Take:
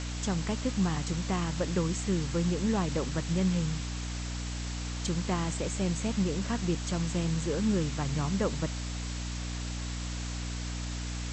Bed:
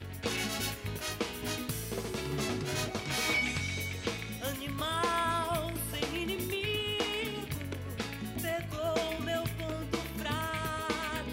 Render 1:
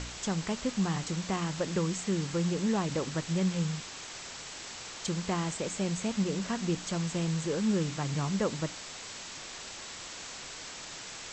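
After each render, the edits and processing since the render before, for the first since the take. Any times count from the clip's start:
hum removal 60 Hz, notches 5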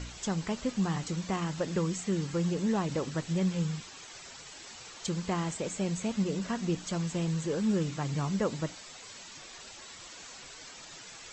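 broadband denoise 9 dB, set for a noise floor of −44 dBFS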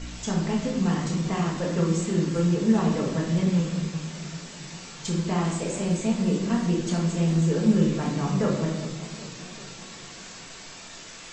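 rectangular room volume 260 cubic metres, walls mixed, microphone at 1.6 metres
feedback echo with a swinging delay time 393 ms, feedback 61%, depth 110 cents, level −15 dB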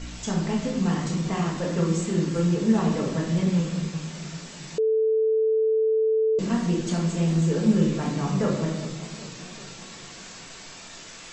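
0:04.78–0:06.39: beep over 440 Hz −18.5 dBFS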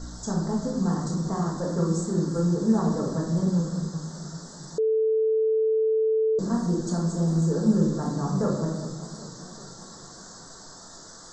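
Chebyshev band-stop filter 1,400–4,500 Hz, order 2
dynamic equaliser 3,100 Hz, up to −4 dB, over −50 dBFS, Q 0.93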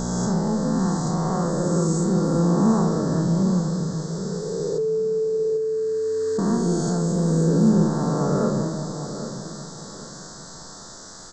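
peak hold with a rise ahead of every peak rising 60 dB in 2.93 s
on a send: repeating echo 794 ms, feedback 30%, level −11 dB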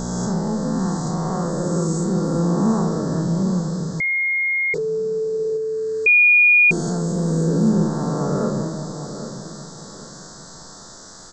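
0:04.00–0:04.74: beep over 2,140 Hz −17.5 dBFS
0:06.06–0:06.71: beep over 2,440 Hz −9.5 dBFS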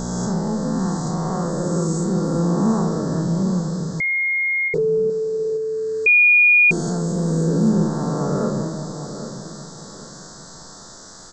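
0:04.68–0:05.10: tilt shelving filter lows +6.5 dB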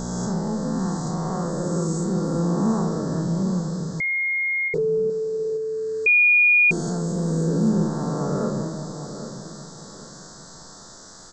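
level −3 dB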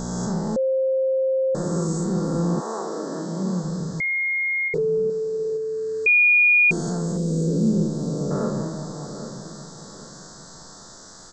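0:00.56–0:01.55: beep over 528 Hz −18 dBFS
0:02.59–0:03.62: high-pass filter 430 Hz → 150 Hz 24 dB per octave
0:07.17–0:08.31: flat-topped bell 1,200 Hz −13.5 dB

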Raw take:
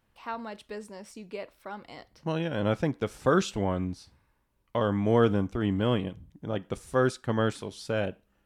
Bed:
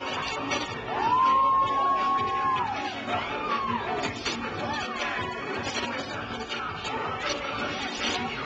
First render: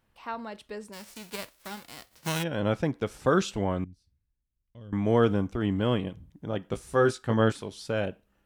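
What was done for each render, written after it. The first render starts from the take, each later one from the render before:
0:00.92–0:02.42: spectral envelope flattened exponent 0.3
0:03.84–0:04.93: guitar amp tone stack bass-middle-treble 10-0-1
0:06.69–0:07.52: double-tracking delay 18 ms −5 dB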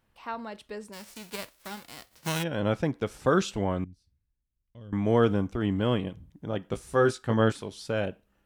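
no processing that can be heard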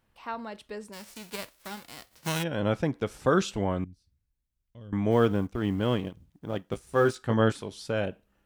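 0:05.11–0:07.16: mu-law and A-law mismatch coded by A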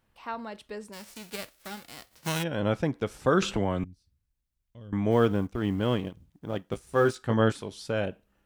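0:01.26–0:01.95: notch filter 1,000 Hz, Q 7.6
0:03.42–0:03.84: multiband upward and downward compressor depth 70%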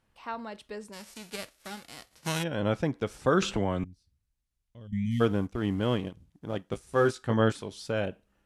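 0:04.87–0:05.21: time-frequency box erased 250–1,800 Hz
elliptic low-pass filter 12,000 Hz, stop band 50 dB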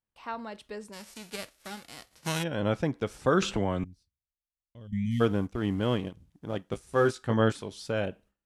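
noise gate with hold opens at −57 dBFS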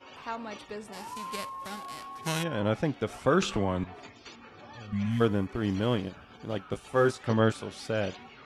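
mix in bed −18 dB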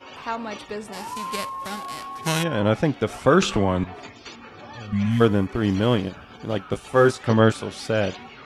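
level +7.5 dB

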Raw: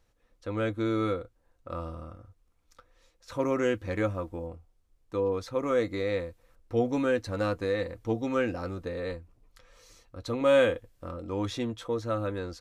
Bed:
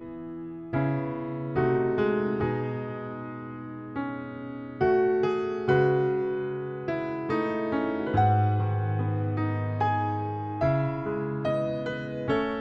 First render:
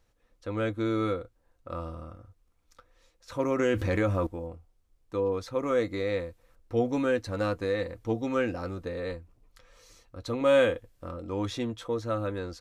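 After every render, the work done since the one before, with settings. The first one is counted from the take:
0:03.59–0:04.27: envelope flattener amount 70%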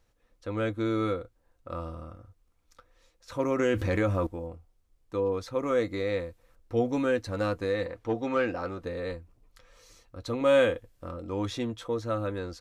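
0:07.86–0:08.83: mid-hump overdrive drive 11 dB, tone 2,000 Hz, clips at −15.5 dBFS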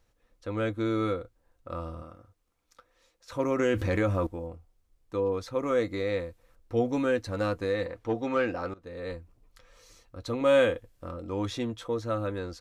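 0:02.02–0:03.33: low-shelf EQ 120 Hz −11 dB
0:08.74–0:09.17: fade in linear, from −20 dB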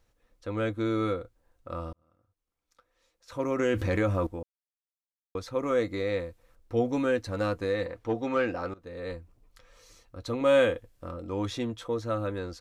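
0:01.93–0:03.81: fade in
0:04.43–0:05.35: silence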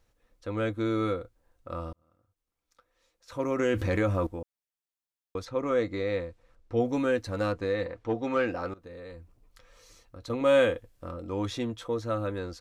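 0:05.45–0:06.80: high-frequency loss of the air 60 metres
0:07.52–0:08.24: high-frequency loss of the air 52 metres
0:08.82–0:10.30: downward compressor, threshold −40 dBFS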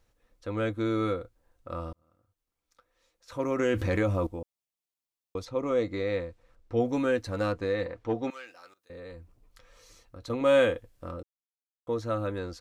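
0:04.03–0:05.87: parametric band 1,600 Hz −7.5 dB 0.6 octaves
0:08.30–0:08.90: first difference
0:11.23–0:11.87: silence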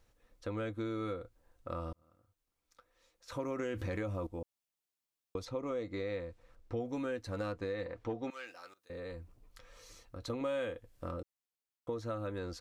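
downward compressor 4 to 1, threshold −36 dBFS, peak gain reduction 15 dB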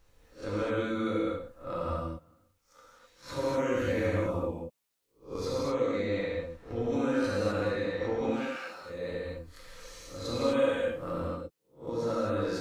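peak hold with a rise ahead of every peak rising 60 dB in 0.32 s
reverb whose tail is shaped and stops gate 280 ms flat, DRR −7 dB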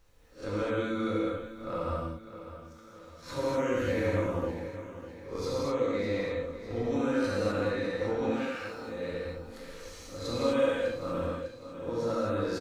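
repeating echo 602 ms, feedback 50%, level −13 dB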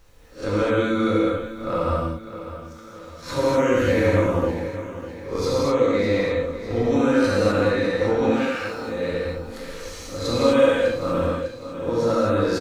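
level +10 dB

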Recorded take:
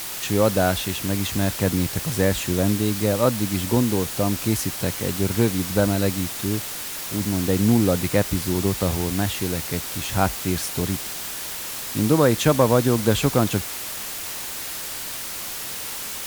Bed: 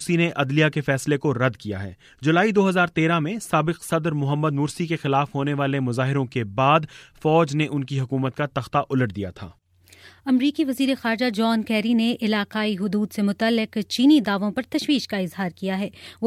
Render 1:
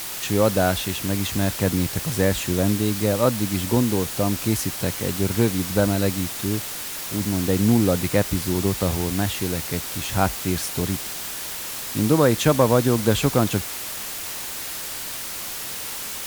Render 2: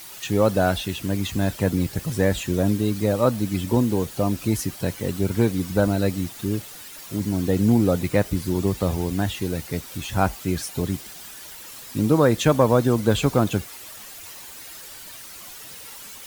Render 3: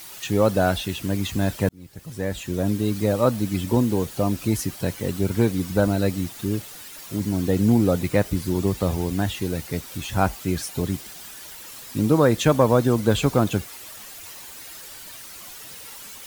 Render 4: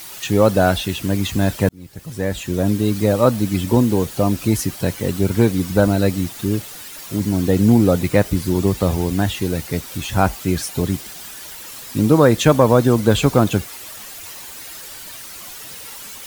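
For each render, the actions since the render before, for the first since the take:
no processing that can be heard
broadband denoise 11 dB, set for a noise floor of −32 dBFS
0:01.69–0:02.95: fade in
level +5 dB; brickwall limiter −1 dBFS, peak gain reduction 1 dB

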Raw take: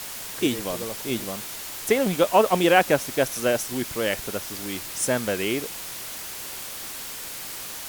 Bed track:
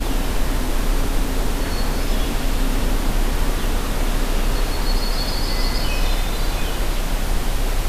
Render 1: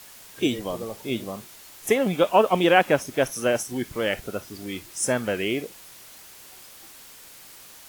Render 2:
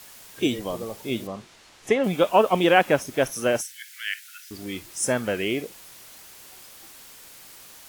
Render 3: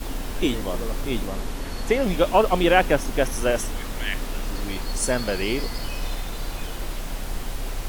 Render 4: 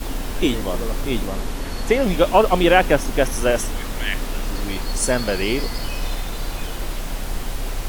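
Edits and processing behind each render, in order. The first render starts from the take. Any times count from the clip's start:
noise reduction from a noise print 11 dB
0:01.27–0:02.04: high-frequency loss of the air 86 metres; 0:03.61–0:04.51: Butterworth high-pass 1,500 Hz 72 dB per octave
mix in bed track −9 dB
level +3.5 dB; brickwall limiter −1 dBFS, peak gain reduction 1.5 dB

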